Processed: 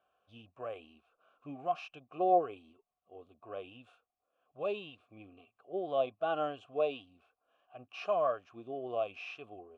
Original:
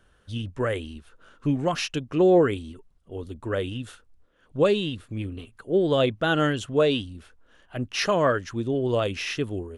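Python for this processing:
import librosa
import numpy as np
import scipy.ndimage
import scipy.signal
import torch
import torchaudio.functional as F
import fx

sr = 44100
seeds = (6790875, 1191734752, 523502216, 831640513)

y = fx.vowel_filter(x, sr, vowel='a')
y = fx.hpss(y, sr, part='percussive', gain_db=-9)
y = y * 10.0 ** (3.0 / 20.0)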